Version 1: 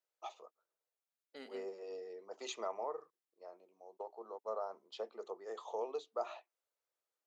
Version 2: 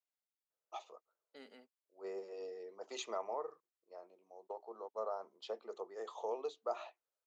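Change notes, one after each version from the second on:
first voice: entry +0.50 s; second voice -4.5 dB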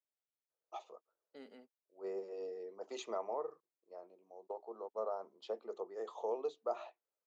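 master: add tilt shelf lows +4.5 dB, about 830 Hz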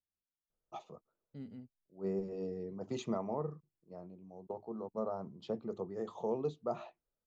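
second voice -6.5 dB; master: remove high-pass 420 Hz 24 dB/octave

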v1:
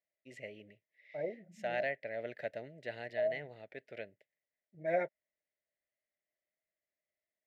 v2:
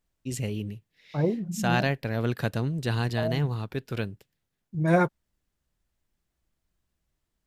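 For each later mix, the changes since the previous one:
master: remove two resonant band-passes 1.1 kHz, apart 1.7 oct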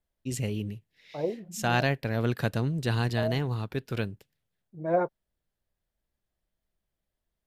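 second voice: add band-pass filter 580 Hz, Q 1.5

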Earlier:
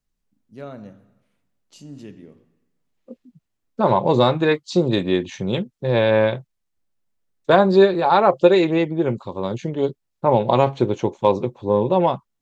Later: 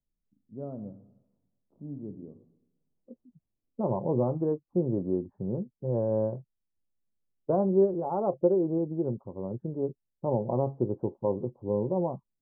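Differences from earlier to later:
second voice -7.5 dB; master: add Gaussian low-pass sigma 12 samples

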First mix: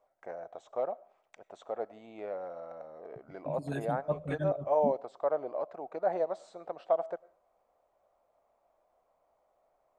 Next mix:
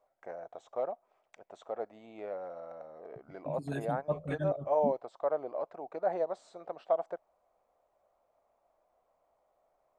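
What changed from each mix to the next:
reverb: off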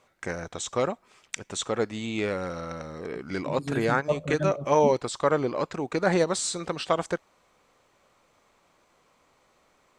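first voice: remove band-pass filter 670 Hz, Q 5; second voice +6.0 dB

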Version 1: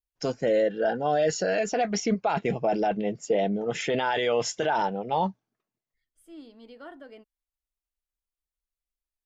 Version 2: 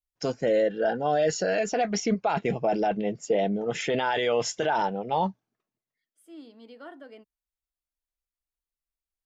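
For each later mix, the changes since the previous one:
second voice: add steep high-pass 150 Hz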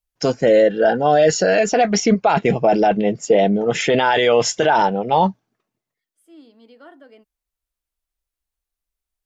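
first voice +10.0 dB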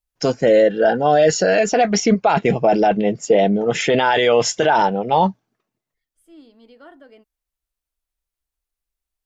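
second voice: remove steep high-pass 150 Hz

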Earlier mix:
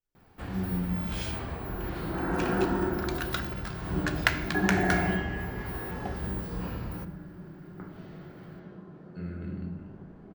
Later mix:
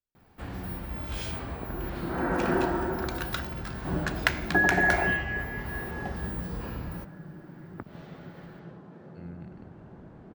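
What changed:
second sound +10.0 dB; reverb: off

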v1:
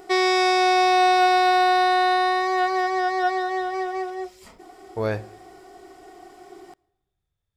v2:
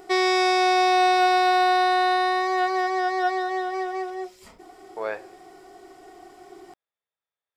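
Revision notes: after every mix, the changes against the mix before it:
speech: add Butterworth band-pass 1.3 kHz, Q 0.51; reverb: off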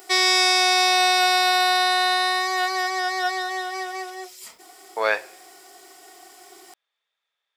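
speech +9.5 dB; master: add tilt EQ +4.5 dB/octave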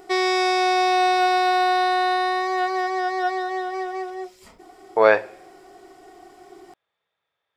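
speech +5.5 dB; master: add tilt EQ -4.5 dB/octave

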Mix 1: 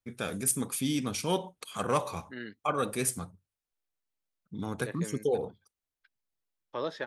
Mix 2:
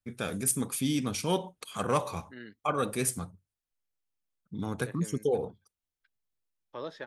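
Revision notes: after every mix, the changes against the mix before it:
second voice -5.5 dB; master: add bass shelf 210 Hz +3 dB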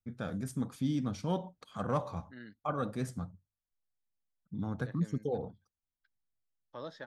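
first voice: add low-pass 1.6 kHz 6 dB/octave; master: add fifteen-band graphic EQ 400 Hz -9 dB, 1 kHz -4 dB, 2.5 kHz -11 dB, 10 kHz -10 dB

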